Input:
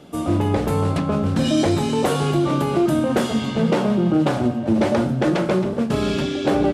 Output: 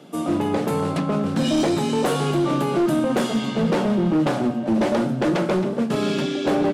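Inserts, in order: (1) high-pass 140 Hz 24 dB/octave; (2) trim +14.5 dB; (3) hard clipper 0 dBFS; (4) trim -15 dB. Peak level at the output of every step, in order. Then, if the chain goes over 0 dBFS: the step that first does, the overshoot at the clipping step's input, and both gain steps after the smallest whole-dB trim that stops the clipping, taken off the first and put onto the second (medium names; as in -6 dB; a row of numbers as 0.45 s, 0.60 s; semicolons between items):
-6.5 dBFS, +8.0 dBFS, 0.0 dBFS, -15.0 dBFS; step 2, 8.0 dB; step 2 +6.5 dB, step 4 -7 dB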